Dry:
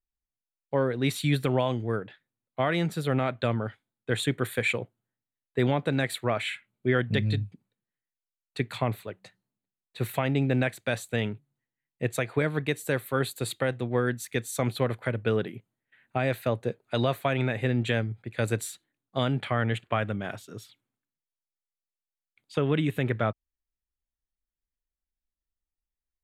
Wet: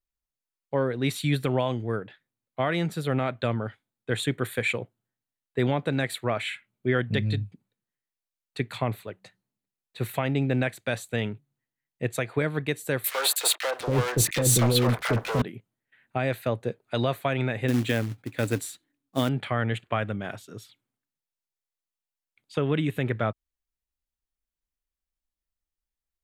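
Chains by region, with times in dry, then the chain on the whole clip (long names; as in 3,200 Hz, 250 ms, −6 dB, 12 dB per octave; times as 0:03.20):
0:13.04–0:15.42: downward compressor 4 to 1, threshold −28 dBFS + leveller curve on the samples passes 5 + three-band delay without the direct sound highs, mids, lows 30/760 ms, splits 530/1,700 Hz
0:17.68–0:19.29: parametric band 280 Hz +13 dB 0.25 octaves + floating-point word with a short mantissa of 2 bits
whole clip: no processing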